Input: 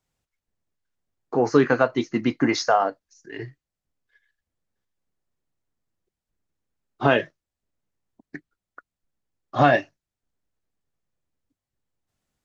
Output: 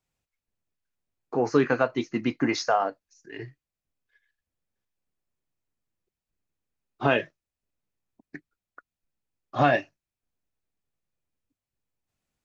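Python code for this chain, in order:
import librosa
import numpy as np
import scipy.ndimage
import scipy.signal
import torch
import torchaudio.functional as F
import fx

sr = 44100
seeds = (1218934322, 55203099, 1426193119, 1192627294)

y = fx.peak_eq(x, sr, hz=2500.0, db=5.5, octaves=0.2)
y = F.gain(torch.from_numpy(y), -4.0).numpy()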